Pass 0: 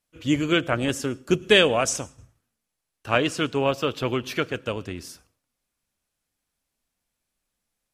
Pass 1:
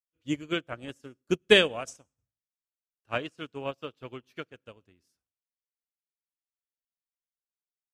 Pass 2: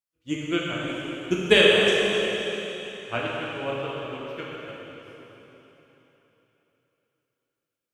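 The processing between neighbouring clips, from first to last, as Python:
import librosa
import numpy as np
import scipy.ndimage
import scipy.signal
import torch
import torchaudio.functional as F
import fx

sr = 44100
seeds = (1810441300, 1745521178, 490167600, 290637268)

y1 = fx.upward_expand(x, sr, threshold_db=-35.0, expansion=2.5)
y2 = fx.rev_plate(y1, sr, seeds[0], rt60_s=3.7, hf_ratio=1.0, predelay_ms=0, drr_db=-5.0)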